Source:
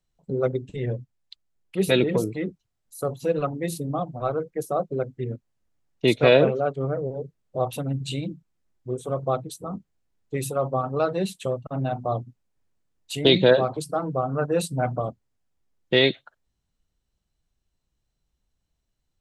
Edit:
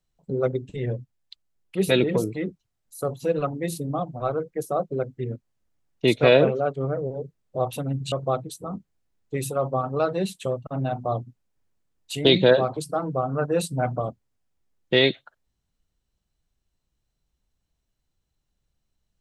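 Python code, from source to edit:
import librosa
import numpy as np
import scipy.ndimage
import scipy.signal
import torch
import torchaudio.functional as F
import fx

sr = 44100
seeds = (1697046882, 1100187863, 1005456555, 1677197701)

y = fx.edit(x, sr, fx.cut(start_s=8.12, length_s=1.0), tone=tone)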